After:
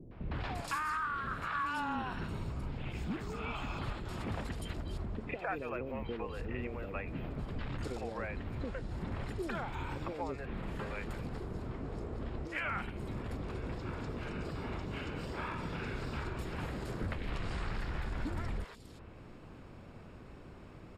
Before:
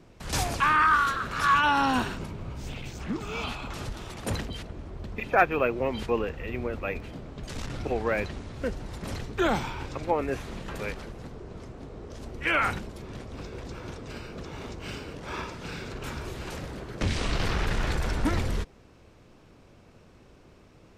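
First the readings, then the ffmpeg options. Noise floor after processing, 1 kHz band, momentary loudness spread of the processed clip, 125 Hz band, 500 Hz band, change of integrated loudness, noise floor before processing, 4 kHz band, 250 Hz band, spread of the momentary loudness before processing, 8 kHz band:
−52 dBFS, −12.0 dB, 7 LU, −5.0 dB, −10.0 dB, −10.0 dB, −55 dBFS, −12.5 dB, −7.0 dB, 17 LU, −15.0 dB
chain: -filter_complex "[0:a]highshelf=frequency=4600:gain=-9,bandreject=frequency=6000:width=5.6,acompressor=threshold=-39dB:ratio=5,acrossover=split=500|3700[link_01][link_02][link_03];[link_02]adelay=110[link_04];[link_03]adelay=350[link_05];[link_01][link_04][link_05]amix=inputs=3:normalize=0,volume=4dB"

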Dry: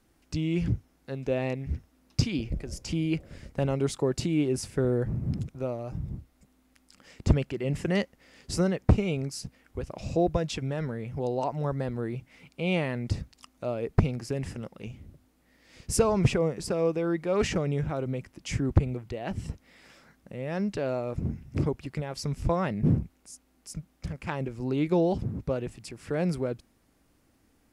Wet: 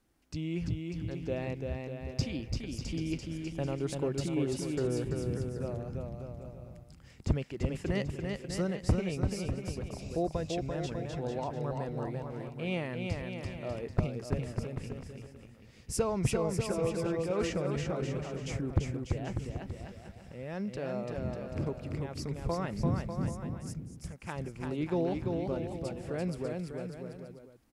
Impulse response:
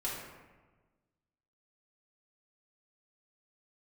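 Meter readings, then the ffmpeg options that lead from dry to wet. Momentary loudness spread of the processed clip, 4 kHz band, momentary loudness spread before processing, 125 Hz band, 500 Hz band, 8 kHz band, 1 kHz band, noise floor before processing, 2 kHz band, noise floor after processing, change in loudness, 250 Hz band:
11 LU, −5.0 dB, 14 LU, −5.0 dB, −4.5 dB, −5.0 dB, −5.0 dB, −67 dBFS, −5.0 dB, −54 dBFS, −5.5 dB, −5.0 dB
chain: -af "aecho=1:1:340|595|786.2|929.7|1037:0.631|0.398|0.251|0.158|0.1,volume=-7dB"

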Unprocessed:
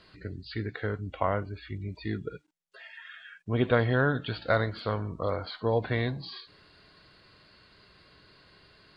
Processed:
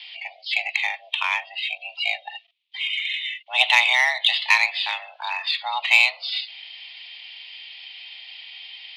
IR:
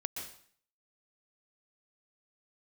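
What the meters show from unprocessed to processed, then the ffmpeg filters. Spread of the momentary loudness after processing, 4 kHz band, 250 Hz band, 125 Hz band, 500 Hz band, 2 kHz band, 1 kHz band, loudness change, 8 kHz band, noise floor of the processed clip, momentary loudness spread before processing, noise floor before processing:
22 LU, +21.0 dB, below −40 dB, below −40 dB, −12.0 dB, +15.0 dB, +7.0 dB, +9.5 dB, can't be measured, −53 dBFS, 19 LU, −62 dBFS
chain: -af "highpass=frequency=300:width_type=q:width=0.5412,highpass=frequency=300:width_type=q:width=1.307,lowpass=frequency=2800:width_type=q:width=0.5176,lowpass=frequency=2800:width_type=q:width=0.7071,lowpass=frequency=2800:width_type=q:width=1.932,afreqshift=380,aeval=exprs='0.266*(cos(1*acos(clip(val(0)/0.266,-1,1)))-cos(1*PI/2))+0.00422*(cos(2*acos(clip(val(0)/0.266,-1,1)))-cos(2*PI/2))':channel_layout=same,aexciter=amount=15.1:drive=10:freq=2500"

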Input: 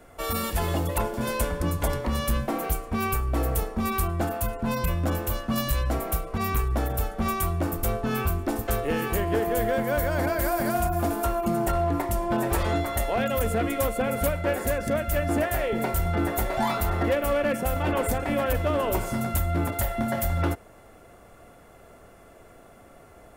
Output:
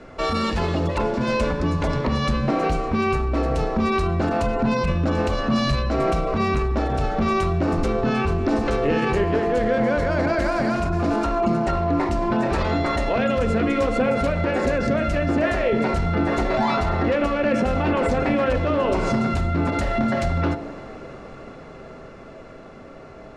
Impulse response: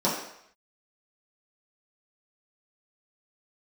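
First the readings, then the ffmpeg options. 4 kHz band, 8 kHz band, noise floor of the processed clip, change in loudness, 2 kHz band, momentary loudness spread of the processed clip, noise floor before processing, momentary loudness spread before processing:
+4.5 dB, −8.0 dB, −41 dBFS, +4.5 dB, +5.0 dB, 3 LU, −51 dBFS, 3 LU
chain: -filter_complex "[0:a]lowpass=frequency=5600:width=0.5412,lowpass=frequency=5600:width=1.3066,bandreject=frequency=710:width=12,dynaudnorm=framelen=280:gausssize=21:maxgain=7.5dB,alimiter=limit=-23dB:level=0:latency=1:release=106,asplit=2[link_01][link_02];[1:a]atrim=start_sample=2205,asetrate=31311,aresample=44100[link_03];[link_02][link_03]afir=irnorm=-1:irlink=0,volume=-22dB[link_04];[link_01][link_04]amix=inputs=2:normalize=0,volume=7.5dB"

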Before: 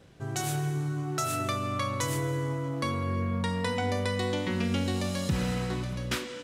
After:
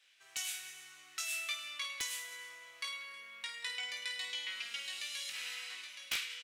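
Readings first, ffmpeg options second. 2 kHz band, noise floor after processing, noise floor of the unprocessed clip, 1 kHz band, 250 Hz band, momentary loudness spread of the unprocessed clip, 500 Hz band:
−3.5 dB, −60 dBFS, −40 dBFS, −19.5 dB, below −40 dB, 3 LU, −29.0 dB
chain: -af "highpass=frequency=2400:width_type=q:width=1.9,aecho=1:1:20|52|103.2|185.1|316.2:0.631|0.398|0.251|0.158|0.1,aeval=exprs='(mod(7.94*val(0)+1,2)-1)/7.94':channel_layout=same,volume=-6.5dB"

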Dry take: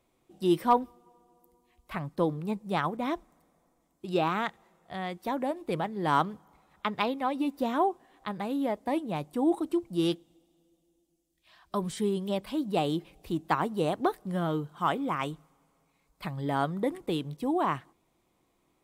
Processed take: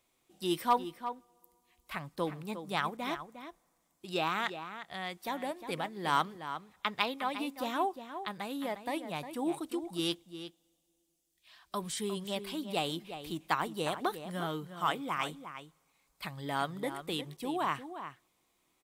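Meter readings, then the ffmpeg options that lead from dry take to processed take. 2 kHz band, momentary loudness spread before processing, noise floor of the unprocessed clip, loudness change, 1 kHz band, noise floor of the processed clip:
+0.5 dB, 10 LU, −73 dBFS, −5.0 dB, −3.5 dB, −76 dBFS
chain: -filter_complex "[0:a]tiltshelf=frequency=1200:gain=-6.5,asplit=2[link_01][link_02];[link_02]adelay=355.7,volume=-10dB,highshelf=frequency=4000:gain=-8[link_03];[link_01][link_03]amix=inputs=2:normalize=0,volume=-2.5dB"

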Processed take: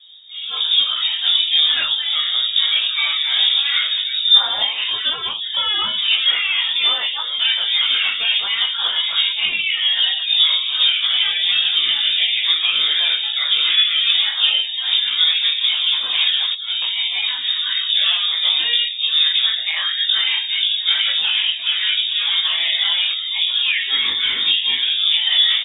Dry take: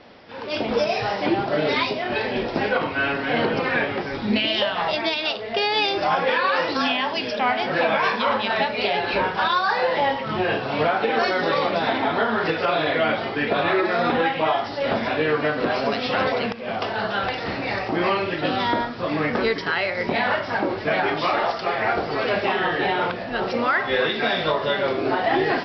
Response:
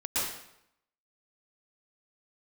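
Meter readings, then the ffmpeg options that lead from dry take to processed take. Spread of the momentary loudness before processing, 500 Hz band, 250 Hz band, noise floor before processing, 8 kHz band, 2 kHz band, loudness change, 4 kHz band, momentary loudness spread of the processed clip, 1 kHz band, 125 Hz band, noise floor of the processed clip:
4 LU, below −20 dB, below −25 dB, −31 dBFS, can't be measured, +0.5 dB, +7.0 dB, +17.0 dB, 5 LU, −12.5 dB, below −20 dB, −26 dBFS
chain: -filter_complex "[0:a]aemphasis=mode=reproduction:type=riaa,asplit=2[link_01][link_02];[link_02]adelay=19,volume=-3dB[link_03];[link_01][link_03]amix=inputs=2:normalize=0,afftdn=noise_reduction=15:noise_floor=-37,flanger=delay=5.7:depth=8:regen=-42:speed=0.96:shape=sinusoidal,lowpass=frequency=3200:width_type=q:width=0.5098,lowpass=frequency=3200:width_type=q:width=0.6013,lowpass=frequency=3200:width_type=q:width=0.9,lowpass=frequency=3200:width_type=q:width=2.563,afreqshift=-3800,volume=3.5dB"

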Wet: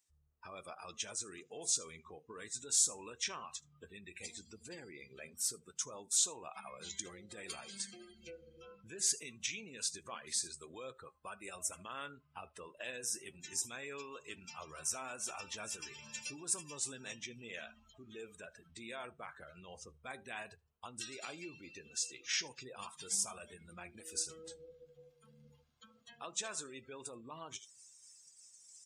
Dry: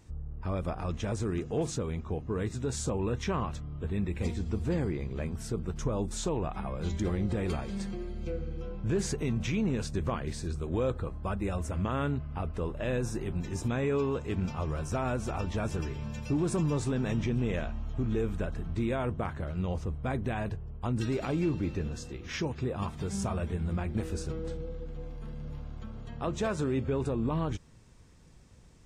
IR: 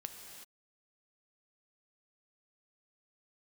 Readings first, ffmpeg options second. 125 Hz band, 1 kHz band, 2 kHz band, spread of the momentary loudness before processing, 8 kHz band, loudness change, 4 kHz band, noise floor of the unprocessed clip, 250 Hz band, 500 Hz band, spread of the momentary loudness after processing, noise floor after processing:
−29.0 dB, −10.5 dB, −4.5 dB, 8 LU, +8.5 dB, −6.5 dB, +3.0 dB, −45 dBFS, −23.0 dB, −17.0 dB, 19 LU, −70 dBFS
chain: -filter_complex "[0:a]asplit=2[link_01][link_02];[link_02]aecho=0:1:77:0.141[link_03];[link_01][link_03]amix=inputs=2:normalize=0,alimiter=level_in=3.5dB:limit=-24dB:level=0:latency=1:release=230,volume=-3.5dB,flanger=delay=7.3:depth=6.5:regen=85:speed=0.18:shape=sinusoidal,areverse,acompressor=mode=upward:threshold=-43dB:ratio=2.5,areverse,aderivative,afftdn=noise_reduction=23:noise_floor=-66,volume=16.5dB"

